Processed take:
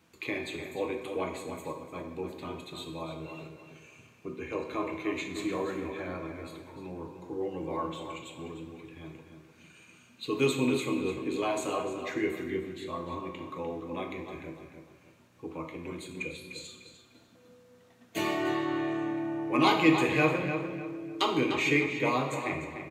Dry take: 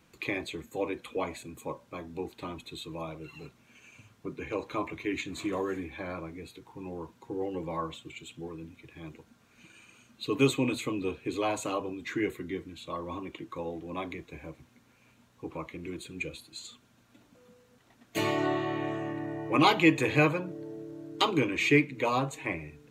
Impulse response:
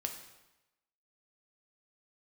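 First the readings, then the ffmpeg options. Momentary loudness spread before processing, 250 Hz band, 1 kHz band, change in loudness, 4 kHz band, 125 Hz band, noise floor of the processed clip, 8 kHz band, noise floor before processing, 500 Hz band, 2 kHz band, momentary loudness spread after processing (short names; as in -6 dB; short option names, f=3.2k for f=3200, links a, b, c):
19 LU, +0.5 dB, 0.0 dB, -0.5 dB, -1.0 dB, -2.0 dB, -60 dBFS, -0.5 dB, -64 dBFS, 0.0 dB, -0.5 dB, 18 LU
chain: -filter_complex "[0:a]highpass=84,acontrast=80,asplit=2[a][b];[b]adelay=299,lowpass=f=4.5k:p=1,volume=-8dB,asplit=2[c][d];[d]adelay=299,lowpass=f=4.5k:p=1,volume=0.32,asplit=2[e][f];[f]adelay=299,lowpass=f=4.5k:p=1,volume=0.32,asplit=2[g][h];[h]adelay=299,lowpass=f=4.5k:p=1,volume=0.32[i];[a][c][e][g][i]amix=inputs=5:normalize=0[j];[1:a]atrim=start_sample=2205[k];[j][k]afir=irnorm=-1:irlink=0,volume=-8dB"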